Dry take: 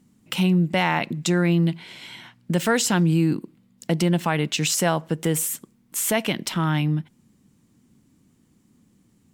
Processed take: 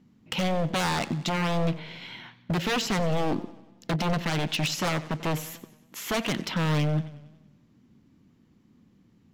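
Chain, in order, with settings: running mean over 5 samples; wavefolder -20.5 dBFS; warbling echo 92 ms, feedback 55%, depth 102 cents, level -17 dB

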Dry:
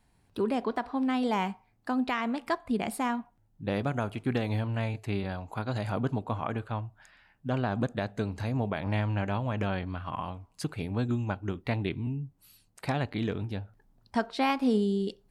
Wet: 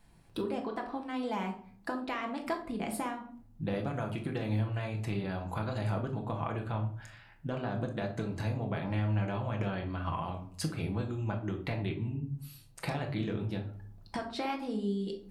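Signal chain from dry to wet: compressor 6:1, threshold -36 dBFS, peak gain reduction 14 dB; on a send: reverb RT60 0.50 s, pre-delay 6 ms, DRR 2 dB; on the sum: gain +2.5 dB

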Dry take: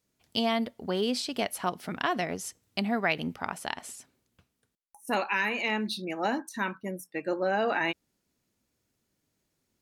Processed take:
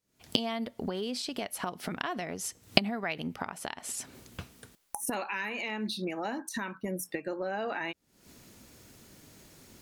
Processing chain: recorder AGC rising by 79 dB/s; gain -7 dB

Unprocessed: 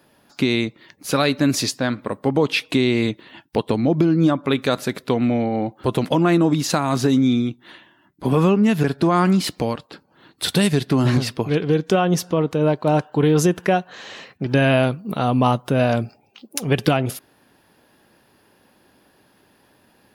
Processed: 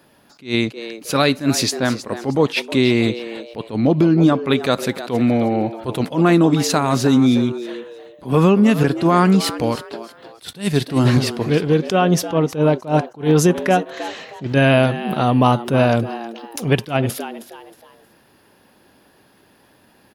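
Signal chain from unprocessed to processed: frequency-shifting echo 0.315 s, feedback 32%, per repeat +110 Hz, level -14 dB; attack slew limiter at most 220 dB/s; gain +3 dB

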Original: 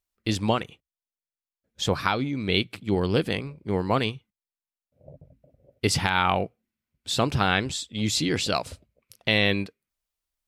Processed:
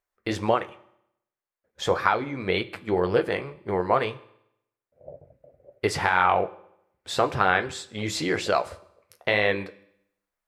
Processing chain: band shelf 900 Hz +12 dB 2.8 oct; in parallel at 0 dB: compressor, threshold -21 dBFS, peak gain reduction 14 dB; on the sum: flange 1.9 Hz, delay 8 ms, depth 5.8 ms, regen -54%; reverb RT60 0.75 s, pre-delay 3 ms, DRR 14.5 dB; gain -6.5 dB

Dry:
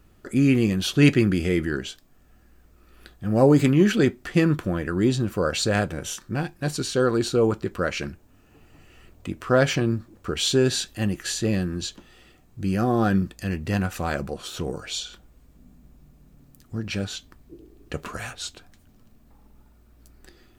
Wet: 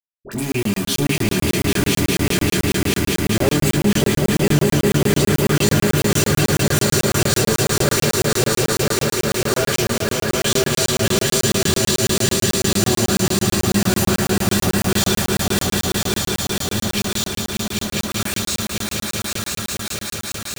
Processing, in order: pre-emphasis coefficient 0.8; in parallel at +1 dB: compressor 5:1, threshold -42 dBFS, peak gain reduction 16.5 dB; on the sum: transient shaper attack +1 dB, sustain +7 dB; requantised 6-bit, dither none; dispersion highs, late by 70 ms, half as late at 1100 Hz; soft clip -26.5 dBFS, distortion -12 dB; swelling echo 0.199 s, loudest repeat 5, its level -4 dB; on a send at -2 dB: reverb RT60 0.30 s, pre-delay 3 ms; on the sum: maximiser +14.5 dB; crackling interface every 0.11 s, samples 1024, zero, from 0.52; gain -5.5 dB

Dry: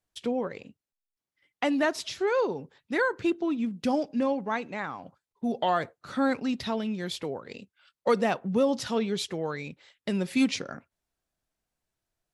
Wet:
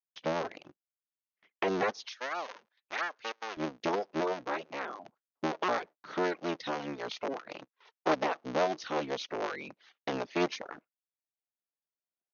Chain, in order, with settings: cycle switcher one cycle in 3, inverted; recorder AGC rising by 6 dB/s; reverb removal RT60 0.51 s; HPF 200 Hz 12 dB/oct, from 2.05 s 1000 Hz, from 3.57 s 290 Hz; gate with hold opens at -50 dBFS; brick-wall FIR low-pass 6700 Hz; high shelf 3300 Hz -8 dB; gain -3 dB

